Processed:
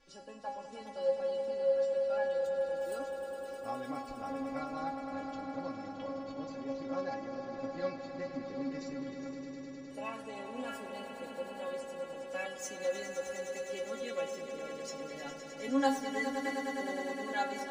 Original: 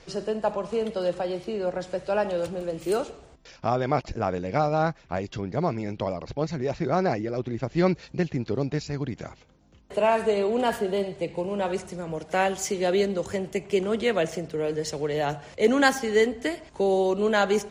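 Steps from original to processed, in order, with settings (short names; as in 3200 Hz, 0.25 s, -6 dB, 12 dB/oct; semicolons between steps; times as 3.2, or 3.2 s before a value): metallic resonator 270 Hz, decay 0.26 s, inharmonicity 0.002; swelling echo 0.103 s, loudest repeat 5, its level -11 dB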